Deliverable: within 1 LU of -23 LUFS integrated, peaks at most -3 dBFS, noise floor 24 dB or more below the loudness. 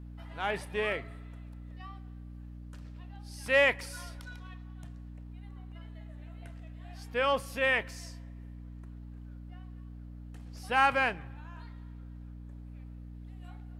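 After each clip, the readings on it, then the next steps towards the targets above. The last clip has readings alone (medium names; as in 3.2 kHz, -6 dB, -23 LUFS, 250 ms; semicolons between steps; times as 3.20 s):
dropouts 2; longest dropout 1.3 ms; hum 60 Hz; highest harmonic 300 Hz; hum level -43 dBFS; loudness -29.5 LUFS; peak level -13.0 dBFS; loudness target -23.0 LUFS
-> interpolate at 0.92/3.83 s, 1.3 ms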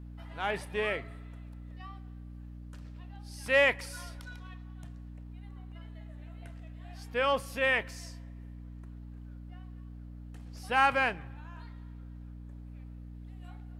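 dropouts 0; hum 60 Hz; highest harmonic 300 Hz; hum level -43 dBFS
-> de-hum 60 Hz, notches 5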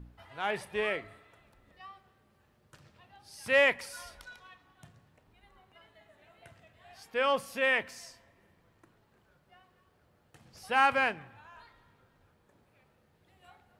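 hum not found; loudness -29.0 LUFS; peak level -13.5 dBFS; loudness target -23.0 LUFS
-> trim +6 dB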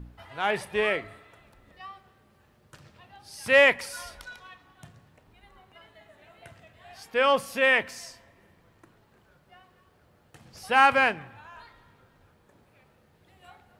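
loudness -23.0 LUFS; peak level -7.5 dBFS; noise floor -63 dBFS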